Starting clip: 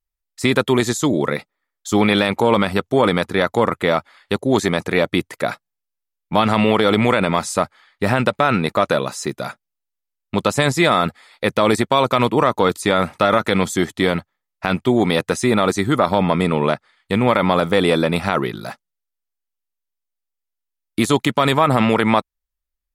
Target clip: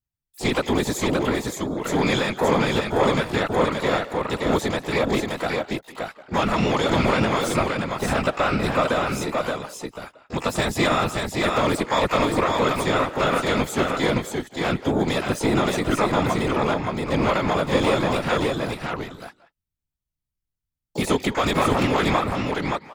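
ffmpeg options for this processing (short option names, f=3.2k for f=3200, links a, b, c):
-filter_complex "[0:a]asplit=2[a][b];[b]adelay=180,highpass=300,lowpass=3.4k,asoftclip=type=hard:threshold=-10.5dB,volume=-15dB[c];[a][c]amix=inputs=2:normalize=0,afftfilt=real='hypot(re,im)*cos(2*PI*random(0))':imag='hypot(re,im)*sin(2*PI*random(1))':win_size=512:overlap=0.75,asplit=2[d][e];[e]aecho=0:1:574:0.668[f];[d][f]amix=inputs=2:normalize=0,asplit=4[g][h][i][j];[h]asetrate=22050,aresample=44100,atempo=2,volume=-15dB[k];[i]asetrate=66075,aresample=44100,atempo=0.66742,volume=-16dB[l];[j]asetrate=88200,aresample=44100,atempo=0.5,volume=-11dB[m];[g][k][l][m]amix=inputs=4:normalize=0"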